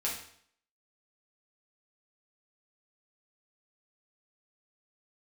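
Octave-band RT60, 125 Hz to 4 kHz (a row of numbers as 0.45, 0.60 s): 0.55, 0.60, 0.60, 0.60, 0.60, 0.60 s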